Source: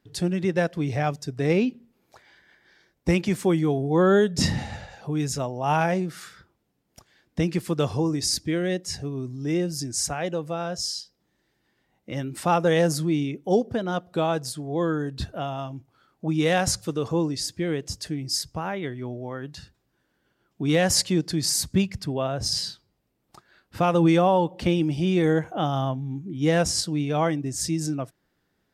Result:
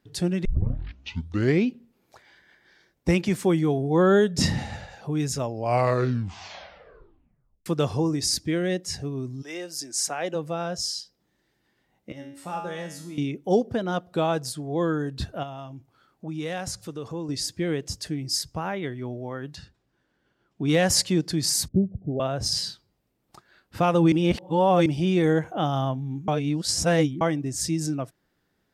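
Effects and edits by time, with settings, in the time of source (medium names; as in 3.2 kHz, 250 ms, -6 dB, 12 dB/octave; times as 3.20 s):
0.45 s: tape start 1.24 s
5.34 s: tape stop 2.32 s
9.41–10.34 s: high-pass 840 Hz -> 230 Hz
12.12–13.18 s: feedback comb 93 Hz, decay 0.61 s, mix 90%
15.43–17.29 s: compression 1.5:1, threshold -44 dBFS
19.56–20.68 s: distance through air 52 m
21.68–22.20 s: steep low-pass 750 Hz 96 dB/octave
24.12–24.86 s: reverse
26.28–27.21 s: reverse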